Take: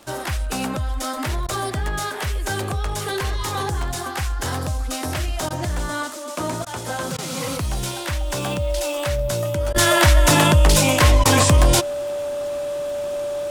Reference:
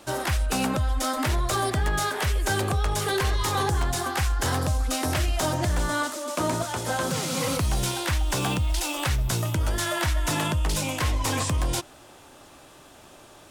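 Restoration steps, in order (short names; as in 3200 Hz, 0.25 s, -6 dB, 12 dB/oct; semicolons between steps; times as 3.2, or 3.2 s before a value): de-click; notch 580 Hz, Q 30; interpolate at 1.47/5.49/6.65/7.17/9.73/11.24, 13 ms; gain 0 dB, from 9.76 s -11 dB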